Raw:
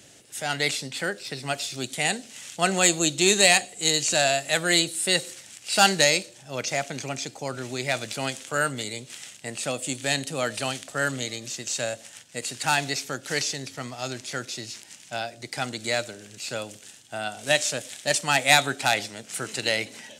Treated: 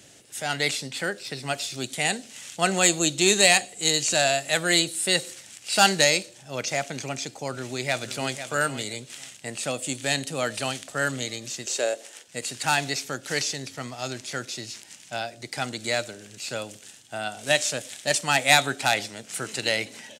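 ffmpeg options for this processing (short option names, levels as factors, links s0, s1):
-filter_complex "[0:a]asplit=2[s0][s1];[s1]afade=t=in:st=7.53:d=0.01,afade=t=out:st=8.43:d=0.01,aecho=0:1:500|1000:0.281838|0.0422757[s2];[s0][s2]amix=inputs=2:normalize=0,asettb=1/sr,asplit=3[s3][s4][s5];[s3]atrim=end=11.664[s6];[s4]atrim=start=11.66:end=12.28,asetpts=PTS-STARTPTS,afade=t=in:d=0.004:c=qsin,afade=t=out:st=0.616:d=0.004:c=qsin,highpass=f=390:t=q:w=3.5[s7];[s5]atrim=start=12.276[s8];[s6][s7]acrossfade=d=0.004:c1=hsin:c2=qsin[s9];[s9][s8]acrossfade=d=0.004:c1=qsin:c2=hsin"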